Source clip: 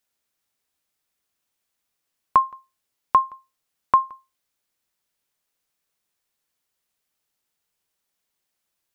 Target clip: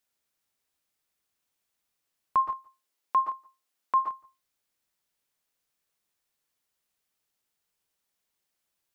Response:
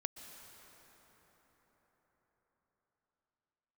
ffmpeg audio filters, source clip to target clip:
-filter_complex "[0:a]asplit=3[link_01][link_02][link_03];[link_01]afade=type=out:start_time=2.52:duration=0.02[link_04];[link_02]highpass=240,afade=type=in:start_time=2.52:duration=0.02,afade=type=out:start_time=3.96:duration=0.02[link_05];[link_03]afade=type=in:start_time=3.96:duration=0.02[link_06];[link_04][link_05][link_06]amix=inputs=3:normalize=0[link_07];[1:a]atrim=start_sample=2205,atrim=end_sample=6615[link_08];[link_07][link_08]afir=irnorm=-1:irlink=0,alimiter=limit=-17dB:level=0:latency=1:release=14"

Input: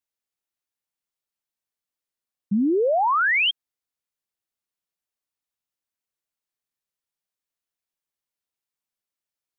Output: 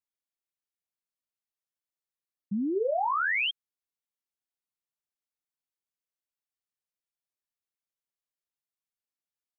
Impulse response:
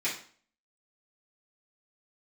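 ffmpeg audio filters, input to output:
-filter_complex "[0:a]asplit=3[link_01][link_02][link_03];[link_01]afade=type=out:start_time=2.74:duration=0.02[link_04];[link_02]asplit=2[link_05][link_06];[link_06]adelay=18,volume=-5dB[link_07];[link_05][link_07]amix=inputs=2:normalize=0,afade=type=in:start_time=2.74:duration=0.02,afade=type=out:start_time=3.46:duration=0.02[link_08];[link_03]afade=type=in:start_time=3.46:duration=0.02[link_09];[link_04][link_08][link_09]amix=inputs=3:normalize=0,volume=-8.5dB"

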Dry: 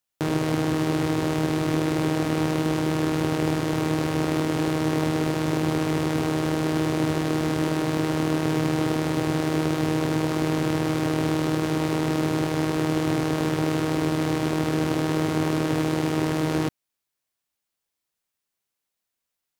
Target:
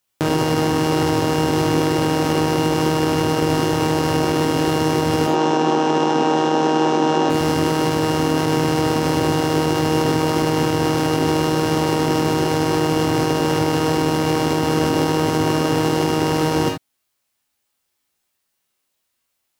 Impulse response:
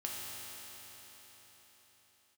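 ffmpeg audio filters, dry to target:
-filter_complex "[0:a]asplit=3[link_01][link_02][link_03];[link_01]afade=type=out:start_time=5.26:duration=0.02[link_04];[link_02]highpass=frequency=190:width=0.5412,highpass=frequency=190:width=1.3066,equalizer=frequency=840:width_type=q:width=4:gain=6,equalizer=frequency=2100:width_type=q:width=4:gain=-7,equalizer=frequency=4600:width_type=q:width=4:gain=-8,lowpass=frequency=6400:width=0.5412,lowpass=frequency=6400:width=1.3066,afade=type=in:start_time=5.26:duration=0.02,afade=type=out:start_time=7.29:duration=0.02[link_05];[link_03]afade=type=in:start_time=7.29:duration=0.02[link_06];[link_04][link_05][link_06]amix=inputs=3:normalize=0[link_07];[1:a]atrim=start_sample=2205,atrim=end_sample=3969[link_08];[link_07][link_08]afir=irnorm=-1:irlink=0,alimiter=level_in=17dB:limit=-1dB:release=50:level=0:latency=1,volume=-6dB"

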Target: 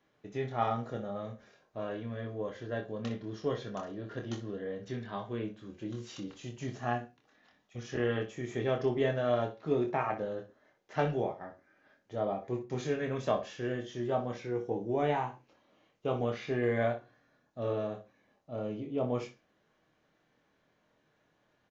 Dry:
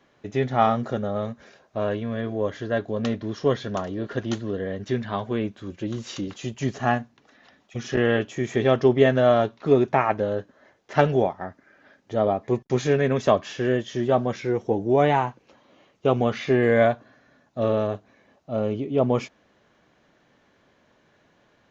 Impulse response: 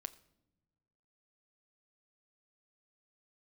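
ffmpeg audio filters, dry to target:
-filter_complex "[0:a]aecho=1:1:25|61:0.531|0.266[link_01];[1:a]atrim=start_sample=2205,afade=type=out:start_time=0.2:duration=0.01,atrim=end_sample=9261,asetrate=48510,aresample=44100[link_02];[link_01][link_02]afir=irnorm=-1:irlink=0,volume=-7.5dB"

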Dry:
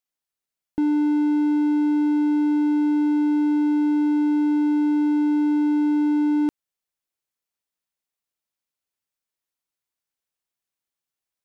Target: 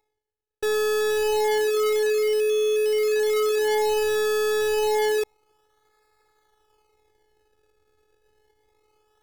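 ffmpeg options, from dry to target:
ffmpeg -i in.wav -af "areverse,acompressor=mode=upward:threshold=-41dB:ratio=2.5,areverse,acrusher=samples=36:mix=1:aa=0.000001:lfo=1:lforange=36:lforate=0.23,afftfilt=real='hypot(re,im)*cos(PI*b)':imag='0':win_size=512:overlap=0.75,asetrate=54684,aresample=44100" out.wav

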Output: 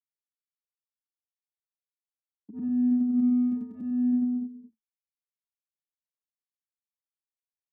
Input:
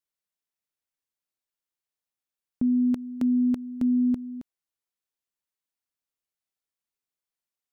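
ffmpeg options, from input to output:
ffmpeg -i in.wav -filter_complex "[0:a]afftfilt=real='re':imag='-im':win_size=8192:overlap=0.75,afwtdn=0.0224,acrossover=split=330|830[link_01][link_02][link_03];[link_01]acompressor=threshold=-28dB:ratio=4[link_04];[link_02]acompressor=threshold=-55dB:ratio=4[link_05];[link_04][link_05][link_03]amix=inputs=3:normalize=0,agate=range=-45dB:threshold=-49dB:ratio=16:detection=peak,aecho=1:1:222:0.224,adynamicequalizer=threshold=0.00316:dfrequency=320:dqfactor=4.6:tfrequency=320:tqfactor=4.6:attack=5:release=100:ratio=0.375:range=1.5:mode=boostabove:tftype=bell,asplit=2[link_06][link_07];[link_07]asoftclip=type=tanh:threshold=-37.5dB,volume=-9dB[link_08];[link_06][link_08]amix=inputs=2:normalize=0,equalizer=frequency=220:width_type=o:width=0.27:gain=13.5,asplit=2[link_09][link_10];[link_10]adelay=6.9,afreqshift=-0.79[link_11];[link_09][link_11]amix=inputs=2:normalize=1" out.wav

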